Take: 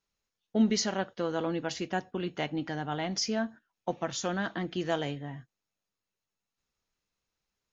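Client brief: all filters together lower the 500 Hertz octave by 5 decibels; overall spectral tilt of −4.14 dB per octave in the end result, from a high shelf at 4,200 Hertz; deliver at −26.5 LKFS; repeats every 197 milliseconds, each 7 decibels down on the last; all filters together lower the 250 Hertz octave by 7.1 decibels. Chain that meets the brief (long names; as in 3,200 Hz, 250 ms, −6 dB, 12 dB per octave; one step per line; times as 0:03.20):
parametric band 250 Hz −8.5 dB
parametric band 500 Hz −4 dB
high-shelf EQ 4,200 Hz −7.5 dB
repeating echo 197 ms, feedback 45%, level −7 dB
level +9.5 dB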